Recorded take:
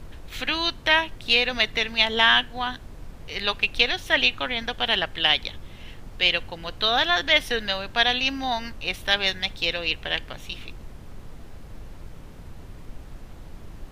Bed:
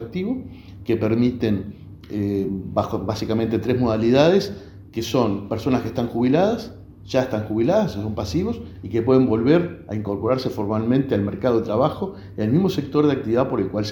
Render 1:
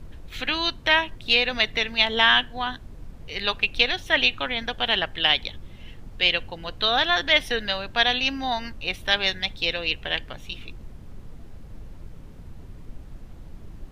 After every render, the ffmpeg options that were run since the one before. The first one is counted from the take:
-af "afftdn=nr=6:nf=-43"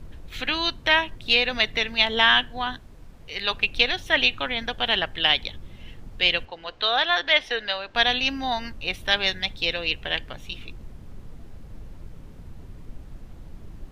-filter_complex "[0:a]asettb=1/sr,asplit=3[a][b][c];[a]atrim=end=2.804[d];[b]atrim=start=2.8:end=3.51,asetpts=PTS-STARTPTS,afade=t=in:d=0.004:c=qsin,afade=t=out:st=0.706:d=0.004:c=qsin,lowshelf=f=410:g=-6[e];[c]atrim=start=3.506[f];[d][e]acrossfade=d=0.004:c1=hsin:c2=qsin[g];[g][f]acrossfade=d=0.004:c1=qsin:c2=hsin,asettb=1/sr,asplit=3[h][i][j];[h]atrim=end=6.454[k];[i]atrim=start=6.45:end=7.95,asetpts=PTS-STARTPTS,afade=t=in:d=0.004:c=qsin,afade=t=out:st=1.496:d=0.004:c=qsin,acrossover=split=360 5900:gain=0.2 1 0.112[l][m][n];[l][m][n]amix=inputs=3:normalize=0[o];[j]atrim=start=7.946[p];[k][o]acrossfade=d=0.004:c1=hsin:c2=qsin[q];[q][p]acrossfade=d=0.004:c1=qsin:c2=hsin"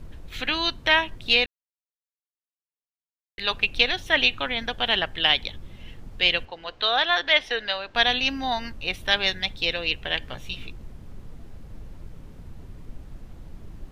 -filter_complex "[0:a]asettb=1/sr,asplit=3[a][b][c];[a]atrim=end=10.204[d];[b]atrim=start=10.2:end=10.68,asetpts=PTS-STARTPTS,afade=t=in:d=0.004:c=qsin,afade=t=out:st=0.476:d=0.004:c=qsin,asplit=2[e][f];[f]adelay=16,volume=-3dB[g];[e][g]amix=inputs=2:normalize=0,atrim=end_sample=21168[h];[c]atrim=start=10.676[i];[d][h]acrossfade=d=0.004:c1=hsin:c2=qsin[j];[j][i]acrossfade=d=0.004:c1=qsin:c2=hsin,asplit=3[k][l][m];[k]atrim=end=1.46,asetpts=PTS-STARTPTS,afade=t=out:st=1.456:d=0.004:c=hsin[n];[l]atrim=start=1.46:end=3.38,asetpts=PTS-STARTPTS,volume=0[o];[m]atrim=start=3.38,asetpts=PTS-STARTPTS,afade=t=in:d=0.004:c=hsin[p];[n][o][p]concat=n=3:v=0:a=1"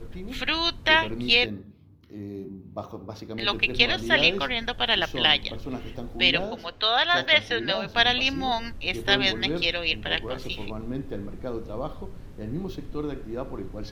-filter_complex "[1:a]volume=-14dB[a];[0:a][a]amix=inputs=2:normalize=0"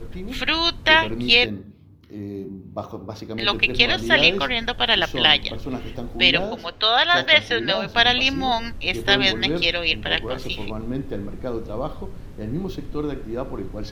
-af "volume=4.5dB,alimiter=limit=-1dB:level=0:latency=1"

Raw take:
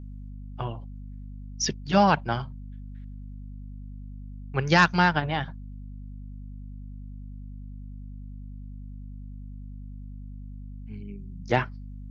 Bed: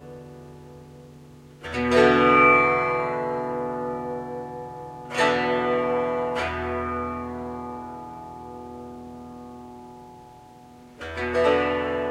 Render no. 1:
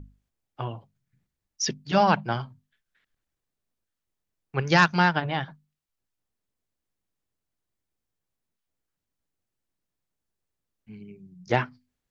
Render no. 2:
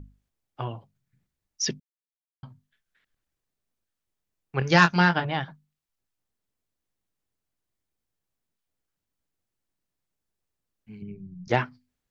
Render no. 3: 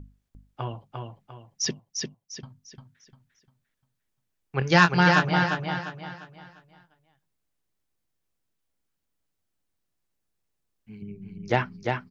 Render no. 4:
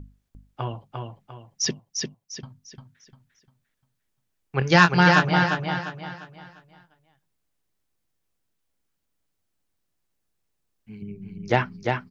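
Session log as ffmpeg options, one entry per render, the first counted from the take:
-af "bandreject=f=50:t=h:w=6,bandreject=f=100:t=h:w=6,bandreject=f=150:t=h:w=6,bandreject=f=200:t=h:w=6,bandreject=f=250:t=h:w=6"
-filter_complex "[0:a]asettb=1/sr,asplit=3[a][b][c];[a]atrim=end=4.594[d];[b]atrim=start=4.59:end=5.25,asetpts=PTS-STARTPTS,afade=t=in:d=0.004:c=qsin,afade=t=out:st=0.656:d=0.004:c=qsin,asplit=2[e][f];[f]adelay=23,volume=-8dB[g];[e][g]amix=inputs=2:normalize=0,atrim=end_sample=29106[h];[c]atrim=start=5.246[i];[d][h]acrossfade=d=0.004:c1=hsin:c2=qsin[j];[j][i]acrossfade=d=0.004:c1=qsin:c2=hsin,asettb=1/sr,asplit=3[k][l][m];[k]atrim=end=11.024[n];[l]atrim=start=11.02:end=11.48,asetpts=PTS-STARTPTS,afade=t=in:d=0.004:c=qsin,afade=t=out:st=0.456:d=0.004:c=qsin,aemphasis=mode=reproduction:type=bsi[o];[m]atrim=start=11.476[p];[n][o]acrossfade=d=0.004:c1=hsin:c2=qsin[q];[q][p]acrossfade=d=0.004:c1=qsin:c2=hsin,asplit=3[r][s][t];[r]atrim=end=1.8,asetpts=PTS-STARTPTS,afade=t=out:st=1.796:d=0.004:c=hsin[u];[s]atrim=start=1.8:end=2.43,asetpts=PTS-STARTPTS,volume=0[v];[t]atrim=start=2.43,asetpts=PTS-STARTPTS,afade=t=in:d=0.004:c=hsin[w];[u][v][w]concat=n=3:v=0:a=1"
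-af "aecho=1:1:349|698|1047|1396|1745:0.631|0.227|0.0818|0.0294|0.0106"
-af "volume=2.5dB,alimiter=limit=-2dB:level=0:latency=1"

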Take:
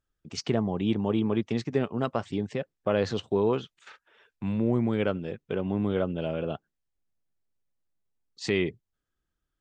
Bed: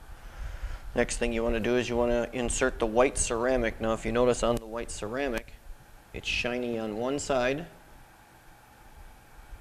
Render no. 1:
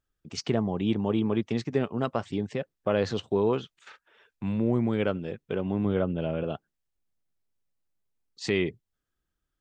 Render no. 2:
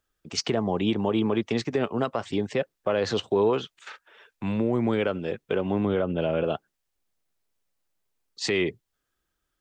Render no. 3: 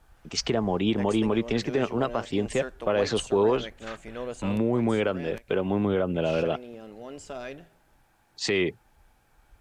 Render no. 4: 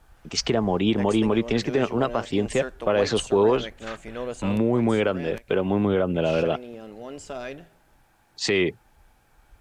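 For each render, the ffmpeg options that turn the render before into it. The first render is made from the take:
-filter_complex "[0:a]asettb=1/sr,asplit=3[a][b][c];[a]atrim=end=5.854[d];[b]atrim=start=5.85:end=6.44,asetpts=PTS-STARTPTS,afade=t=in:d=0.004:c=qsin,afade=t=out:st=0.586:d=0.004:c=qsin,bass=f=250:g=3,treble=f=4k:g=-10[e];[c]atrim=start=6.436[f];[d][e]acrossfade=d=0.004:c1=hsin:c2=qsin[g];[g][f]acrossfade=d=0.004:c1=qsin:c2=hsin"
-filter_complex "[0:a]acrossover=split=330[a][b];[b]acontrast=85[c];[a][c]amix=inputs=2:normalize=0,alimiter=limit=-14.5dB:level=0:latency=1:release=91"
-filter_complex "[1:a]volume=-11dB[a];[0:a][a]amix=inputs=2:normalize=0"
-af "volume=3dB"

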